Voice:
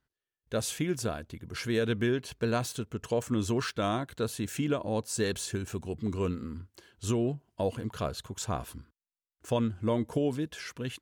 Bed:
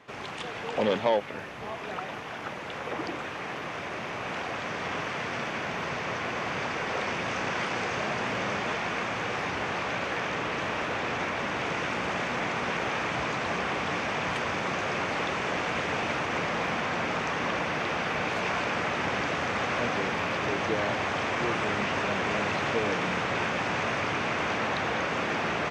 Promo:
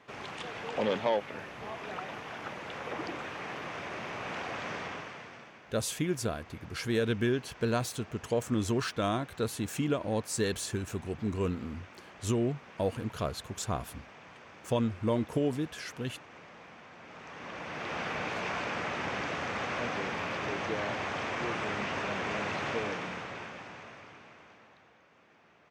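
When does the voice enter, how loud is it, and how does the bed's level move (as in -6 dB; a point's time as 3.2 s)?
5.20 s, -0.5 dB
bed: 4.75 s -4 dB
5.62 s -22 dB
16.97 s -22 dB
17.99 s -5.5 dB
22.78 s -5.5 dB
24.99 s -33.5 dB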